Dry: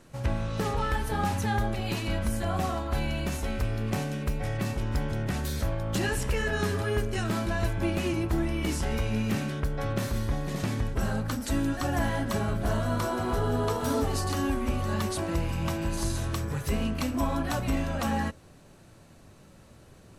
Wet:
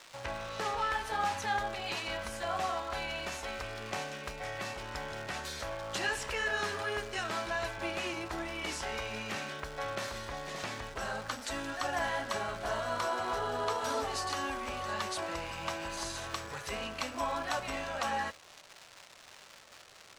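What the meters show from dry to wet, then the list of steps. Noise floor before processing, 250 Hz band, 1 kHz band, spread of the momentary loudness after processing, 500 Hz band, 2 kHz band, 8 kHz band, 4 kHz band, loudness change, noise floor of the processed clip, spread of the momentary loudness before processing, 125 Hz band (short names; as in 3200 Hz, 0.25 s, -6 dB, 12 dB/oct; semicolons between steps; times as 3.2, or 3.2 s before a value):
-53 dBFS, -15.0 dB, -1.0 dB, 7 LU, -5.0 dB, 0.0 dB, -3.5 dB, 0.0 dB, -6.0 dB, -55 dBFS, 3 LU, -19.0 dB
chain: crackle 450/s -36 dBFS; three-band isolator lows -19 dB, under 510 Hz, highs -15 dB, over 7800 Hz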